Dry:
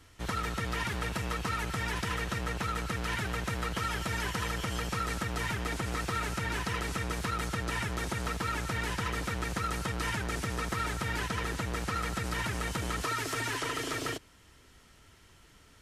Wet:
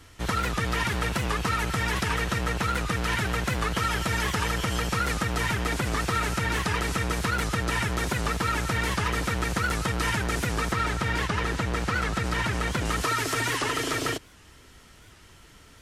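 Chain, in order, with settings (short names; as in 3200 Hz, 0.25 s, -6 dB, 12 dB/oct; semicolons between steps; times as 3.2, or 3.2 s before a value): 10.72–12.86 high shelf 9000 Hz -11 dB; record warp 78 rpm, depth 160 cents; gain +6.5 dB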